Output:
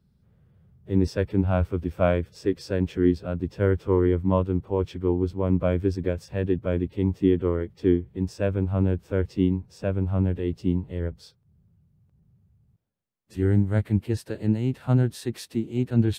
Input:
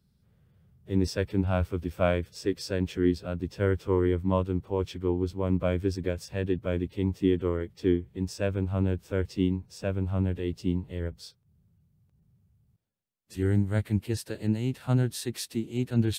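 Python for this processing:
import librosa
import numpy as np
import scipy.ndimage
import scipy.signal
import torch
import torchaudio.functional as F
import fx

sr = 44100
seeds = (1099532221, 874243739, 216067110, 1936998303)

y = fx.high_shelf(x, sr, hz=2500.0, db=-10.0)
y = F.gain(torch.from_numpy(y), 4.0).numpy()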